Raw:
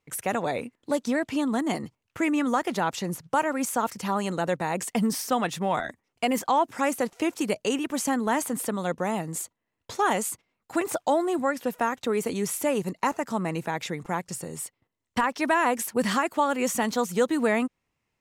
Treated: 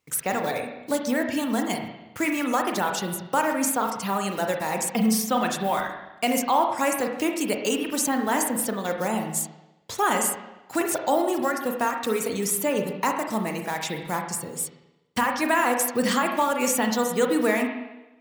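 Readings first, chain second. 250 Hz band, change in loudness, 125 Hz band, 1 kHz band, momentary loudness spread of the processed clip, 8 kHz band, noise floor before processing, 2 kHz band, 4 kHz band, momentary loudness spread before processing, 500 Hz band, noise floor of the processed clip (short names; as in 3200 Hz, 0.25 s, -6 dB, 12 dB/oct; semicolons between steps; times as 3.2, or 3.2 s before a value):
+1.0 dB, +2.0 dB, -0.5 dB, +2.0 dB, 7 LU, +5.5 dB, -81 dBFS, +2.5 dB, +3.5 dB, 8 LU, +1.5 dB, -53 dBFS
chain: block floating point 5-bit; reverb removal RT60 0.91 s; HPF 46 Hz; high shelf 4000 Hz +7.5 dB; spring tank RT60 1 s, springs 32/41/45 ms, chirp 35 ms, DRR 3 dB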